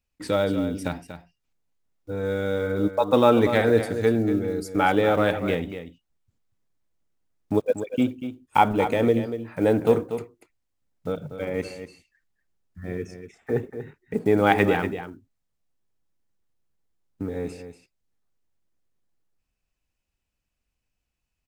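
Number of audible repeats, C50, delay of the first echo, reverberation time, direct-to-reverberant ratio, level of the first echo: 1, none, 0.239 s, none, none, -10.5 dB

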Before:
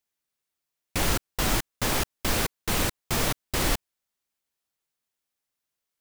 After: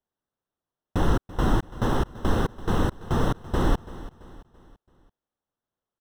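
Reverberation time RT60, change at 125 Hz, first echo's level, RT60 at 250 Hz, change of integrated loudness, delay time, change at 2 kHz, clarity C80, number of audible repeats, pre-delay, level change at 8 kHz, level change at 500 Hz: none, +6.0 dB, -17.0 dB, none, 0.0 dB, 0.335 s, -5.5 dB, none, 3, none, -16.0 dB, +3.5 dB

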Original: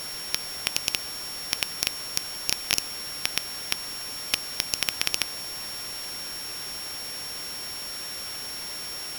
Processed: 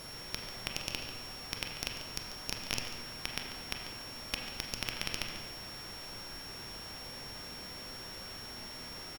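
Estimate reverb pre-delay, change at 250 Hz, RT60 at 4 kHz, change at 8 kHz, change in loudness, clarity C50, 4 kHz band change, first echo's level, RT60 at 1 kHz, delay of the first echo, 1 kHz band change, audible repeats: 25 ms, -2.0 dB, 1.2 s, -14.0 dB, -10.5 dB, 4.0 dB, -10.0 dB, -11.5 dB, 1.2 s, 0.142 s, -6.0 dB, 1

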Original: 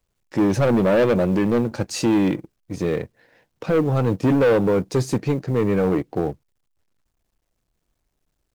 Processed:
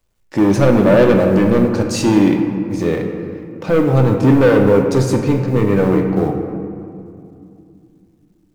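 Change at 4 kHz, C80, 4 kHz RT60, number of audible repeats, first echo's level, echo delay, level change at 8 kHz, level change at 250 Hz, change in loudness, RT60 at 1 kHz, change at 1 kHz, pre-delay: +5.0 dB, 6.5 dB, 1.3 s, none, none, none, +5.0 dB, +7.0 dB, +6.5 dB, 2.4 s, +6.0 dB, 3 ms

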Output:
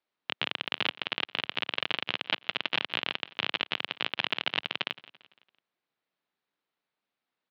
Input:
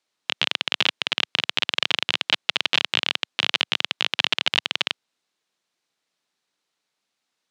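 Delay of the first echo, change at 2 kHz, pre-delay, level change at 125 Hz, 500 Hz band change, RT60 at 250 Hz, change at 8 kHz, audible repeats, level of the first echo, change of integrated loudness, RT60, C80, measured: 0.169 s, -7.0 dB, none, -3.5 dB, -4.5 dB, none, under -20 dB, 3, -20.0 dB, -8.5 dB, none, none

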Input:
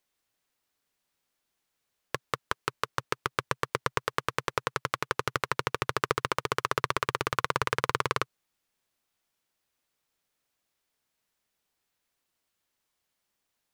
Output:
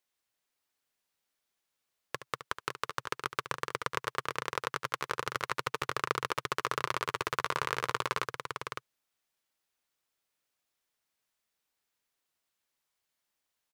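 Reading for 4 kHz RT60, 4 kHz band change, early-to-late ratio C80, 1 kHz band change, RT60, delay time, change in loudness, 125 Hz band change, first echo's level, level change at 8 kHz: none, -3.0 dB, none, -3.5 dB, none, 71 ms, -4.0 dB, -7.0 dB, -12.0 dB, -3.0 dB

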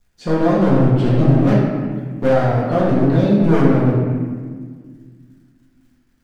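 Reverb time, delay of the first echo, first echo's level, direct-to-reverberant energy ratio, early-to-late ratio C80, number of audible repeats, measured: 1.7 s, none, none, -7.5 dB, 2.0 dB, none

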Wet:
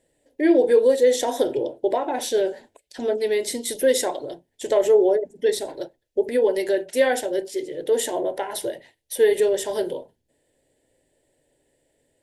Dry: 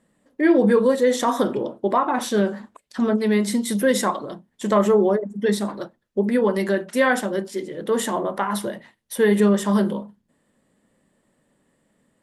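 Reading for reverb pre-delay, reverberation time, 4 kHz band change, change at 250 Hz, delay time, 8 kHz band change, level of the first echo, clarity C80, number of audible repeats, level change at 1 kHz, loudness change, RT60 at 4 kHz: none, none, +1.0 dB, -7.0 dB, none, +2.0 dB, none, none, none, -6.0 dB, -1.0 dB, none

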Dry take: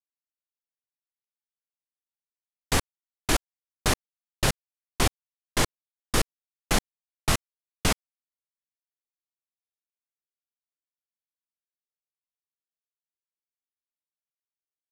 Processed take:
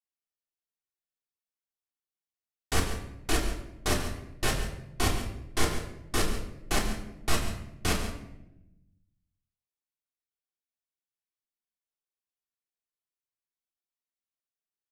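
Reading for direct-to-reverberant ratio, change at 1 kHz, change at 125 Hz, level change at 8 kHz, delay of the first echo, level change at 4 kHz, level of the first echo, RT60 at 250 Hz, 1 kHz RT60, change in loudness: -2.5 dB, -3.0 dB, -1.5 dB, -4.0 dB, 0.14 s, -3.5 dB, -11.5 dB, 1.4 s, 0.75 s, -3.5 dB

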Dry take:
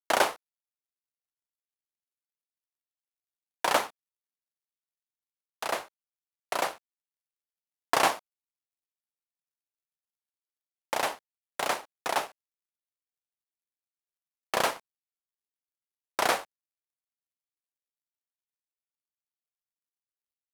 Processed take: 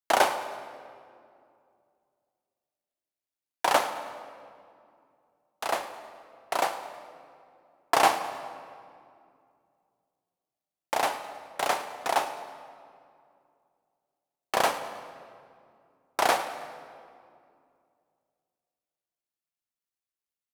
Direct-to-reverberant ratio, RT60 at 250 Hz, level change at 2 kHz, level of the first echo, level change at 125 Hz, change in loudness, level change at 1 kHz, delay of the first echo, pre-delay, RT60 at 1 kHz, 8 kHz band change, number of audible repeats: 8.5 dB, 2.9 s, +1.0 dB, -18.0 dB, +0.5 dB, +1.0 dB, +3.5 dB, 0.106 s, 3 ms, 2.2 s, +0.5 dB, 1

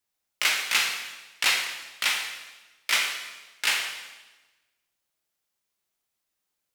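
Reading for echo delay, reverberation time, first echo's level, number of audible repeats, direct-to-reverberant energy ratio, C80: none, 1.2 s, none, none, 1.0 dB, 7.0 dB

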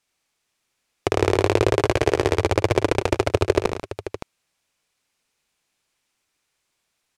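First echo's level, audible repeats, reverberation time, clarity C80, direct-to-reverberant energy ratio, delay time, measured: -5.5 dB, 4, none, none, none, 75 ms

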